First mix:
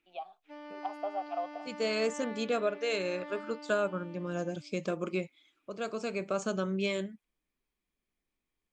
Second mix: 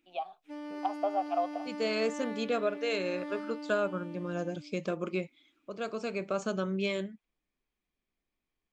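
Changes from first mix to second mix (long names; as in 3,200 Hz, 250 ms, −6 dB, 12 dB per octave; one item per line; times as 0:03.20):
first voice +5.0 dB
second voice: add low-pass filter 6,400 Hz 12 dB per octave
background: remove band-pass filter 460–4,100 Hz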